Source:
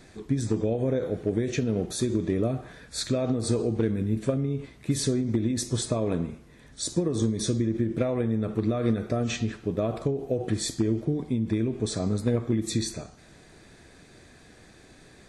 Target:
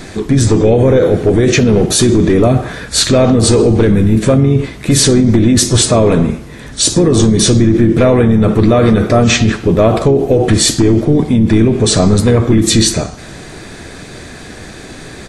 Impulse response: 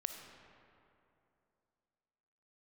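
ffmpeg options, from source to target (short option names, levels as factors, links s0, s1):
-filter_complex "[0:a]apsyclip=20,asplit=3[s0][s1][s2];[s1]asetrate=29433,aresample=44100,atempo=1.49831,volume=0.141[s3];[s2]asetrate=37084,aresample=44100,atempo=1.18921,volume=0.251[s4];[s0][s3][s4]amix=inputs=3:normalize=0,volume=0.596"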